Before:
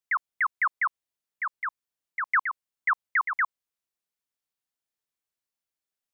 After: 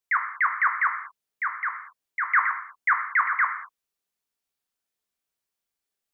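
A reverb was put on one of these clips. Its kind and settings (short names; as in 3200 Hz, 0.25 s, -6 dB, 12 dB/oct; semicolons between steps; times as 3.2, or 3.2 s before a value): non-linear reverb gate 0.25 s falling, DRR 2.5 dB; gain +2 dB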